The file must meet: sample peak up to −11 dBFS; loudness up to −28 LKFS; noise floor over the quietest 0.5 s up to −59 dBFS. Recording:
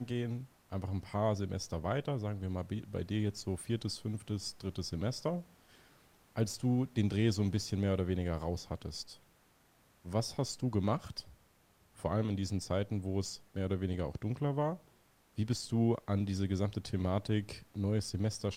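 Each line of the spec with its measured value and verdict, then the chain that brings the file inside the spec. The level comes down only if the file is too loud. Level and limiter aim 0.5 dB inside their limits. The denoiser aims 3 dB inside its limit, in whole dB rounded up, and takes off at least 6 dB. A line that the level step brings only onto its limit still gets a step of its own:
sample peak −18.5 dBFS: in spec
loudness −36.0 LKFS: in spec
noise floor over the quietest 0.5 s −68 dBFS: in spec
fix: no processing needed

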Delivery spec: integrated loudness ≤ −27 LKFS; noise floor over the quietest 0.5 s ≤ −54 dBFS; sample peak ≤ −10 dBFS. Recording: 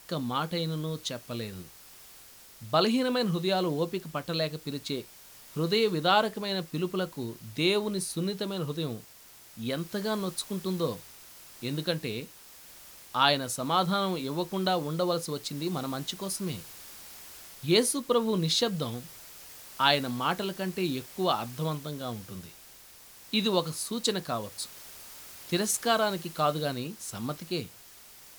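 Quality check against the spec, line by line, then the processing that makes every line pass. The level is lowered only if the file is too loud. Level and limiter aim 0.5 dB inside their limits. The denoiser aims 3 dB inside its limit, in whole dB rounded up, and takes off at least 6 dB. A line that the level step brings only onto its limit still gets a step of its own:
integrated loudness −30.0 LKFS: in spec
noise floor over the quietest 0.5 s −53 dBFS: out of spec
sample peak −7.5 dBFS: out of spec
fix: broadband denoise 6 dB, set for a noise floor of −53 dBFS
brickwall limiter −10.5 dBFS

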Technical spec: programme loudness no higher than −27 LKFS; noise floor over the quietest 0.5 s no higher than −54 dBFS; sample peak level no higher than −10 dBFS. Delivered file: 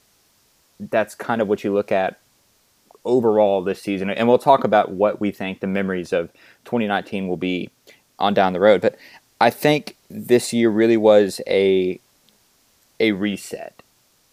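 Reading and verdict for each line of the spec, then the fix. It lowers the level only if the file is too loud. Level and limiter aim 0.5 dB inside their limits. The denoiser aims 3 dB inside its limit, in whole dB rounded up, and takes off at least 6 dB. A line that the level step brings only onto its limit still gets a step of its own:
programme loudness −19.5 LKFS: out of spec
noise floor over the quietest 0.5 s −61 dBFS: in spec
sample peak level −2.0 dBFS: out of spec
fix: level −8 dB
brickwall limiter −10.5 dBFS

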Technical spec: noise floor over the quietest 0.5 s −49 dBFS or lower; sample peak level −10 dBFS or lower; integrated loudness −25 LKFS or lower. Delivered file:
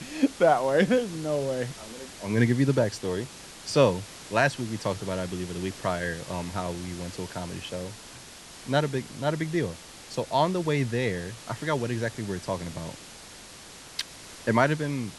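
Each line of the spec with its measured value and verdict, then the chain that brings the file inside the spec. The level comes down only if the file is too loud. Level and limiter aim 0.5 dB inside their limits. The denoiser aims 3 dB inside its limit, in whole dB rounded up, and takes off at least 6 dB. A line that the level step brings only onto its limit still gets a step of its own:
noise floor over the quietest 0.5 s −46 dBFS: out of spec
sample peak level −7.0 dBFS: out of spec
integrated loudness −28.0 LKFS: in spec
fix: broadband denoise 6 dB, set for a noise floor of −46 dBFS
brickwall limiter −10.5 dBFS

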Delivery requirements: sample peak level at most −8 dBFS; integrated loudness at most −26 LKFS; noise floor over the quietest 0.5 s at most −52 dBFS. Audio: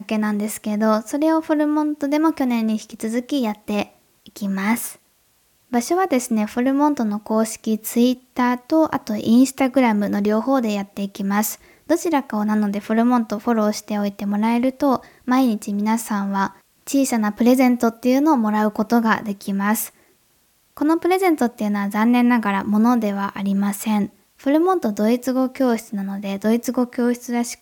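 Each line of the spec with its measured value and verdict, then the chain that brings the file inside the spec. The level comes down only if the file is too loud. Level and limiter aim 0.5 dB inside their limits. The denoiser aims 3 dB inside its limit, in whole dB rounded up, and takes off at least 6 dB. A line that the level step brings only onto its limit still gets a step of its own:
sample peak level −4.0 dBFS: out of spec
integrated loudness −20.0 LKFS: out of spec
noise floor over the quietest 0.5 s −61 dBFS: in spec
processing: level −6.5 dB

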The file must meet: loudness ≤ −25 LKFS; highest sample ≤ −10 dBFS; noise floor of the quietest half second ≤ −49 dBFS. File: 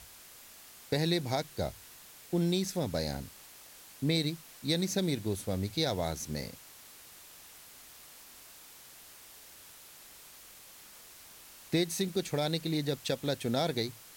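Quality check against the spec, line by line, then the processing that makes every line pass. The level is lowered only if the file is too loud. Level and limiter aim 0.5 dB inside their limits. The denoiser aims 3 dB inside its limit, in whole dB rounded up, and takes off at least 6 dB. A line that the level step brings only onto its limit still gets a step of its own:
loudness −32.5 LKFS: in spec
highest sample −15.5 dBFS: in spec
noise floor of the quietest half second −53 dBFS: in spec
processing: no processing needed

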